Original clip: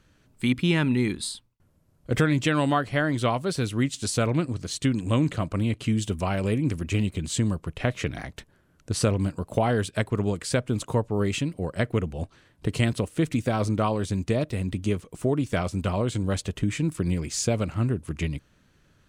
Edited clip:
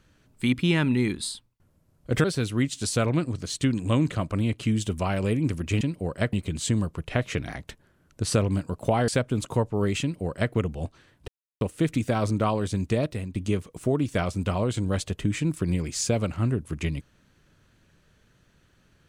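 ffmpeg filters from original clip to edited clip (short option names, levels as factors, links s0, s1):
-filter_complex "[0:a]asplit=8[s0][s1][s2][s3][s4][s5][s6][s7];[s0]atrim=end=2.242[s8];[s1]atrim=start=3.448:end=7.022[s9];[s2]atrim=start=11.388:end=11.912[s10];[s3]atrim=start=7.018:end=9.772[s11];[s4]atrim=start=10.458:end=12.66,asetpts=PTS-STARTPTS,afade=t=out:st=2.198:d=0.004:c=hsin[s12];[s5]atrim=start=12.66:end=12.99,asetpts=PTS-STARTPTS,volume=0[s13];[s6]atrim=start=12.99:end=14.73,asetpts=PTS-STARTPTS,afade=t=in:d=0.004:c=hsin,afade=t=out:st=1.46:d=0.28:silence=0.266073[s14];[s7]atrim=start=14.73,asetpts=PTS-STARTPTS,afade=t=in:d=0.004:c=hsin:silence=0.266073[s15];[s8][s9]acrossfade=d=0.004:c1=hsin:c2=hsin[s16];[s16][s10]acrossfade=d=0.004:c1=hsin:c2=hsin[s17];[s17][s11]acrossfade=d=0.004:c1=hsin:c2=hsin[s18];[s12][s13][s14][s15]concat=n=4:v=0:a=1[s19];[s18][s19]acrossfade=d=0.004:c1=hsin:c2=hsin"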